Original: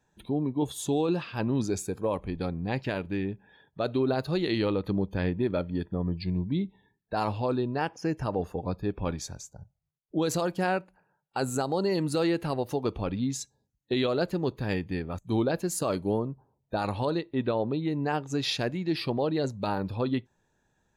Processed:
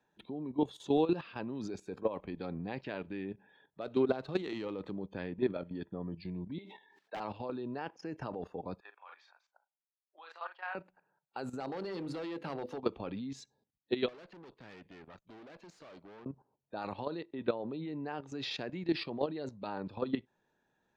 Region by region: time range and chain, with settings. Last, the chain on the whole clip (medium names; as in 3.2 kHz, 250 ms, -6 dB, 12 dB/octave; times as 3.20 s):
3.81–5.00 s: band-stop 4.7 kHz, Q 8.6 + sliding maximum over 3 samples
6.58–7.20 s: high-pass 640 Hz + integer overflow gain 24.5 dB + decay stretcher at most 50 dB/s
8.80–10.75 s: high-pass 950 Hz 24 dB/octave + distance through air 440 m + doubling 37 ms -6.5 dB
11.60–12.78 s: high-pass 100 Hz + hum notches 50/100/150/200/250/300/350/400/450/500 Hz + hard clipper -26 dBFS
14.08–16.26 s: low-pass 5.8 kHz + bass shelf 470 Hz -8 dB + valve stage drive 42 dB, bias 0.7
whole clip: de-esser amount 80%; three-band isolator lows -14 dB, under 170 Hz, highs -22 dB, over 5.2 kHz; level held to a coarse grid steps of 13 dB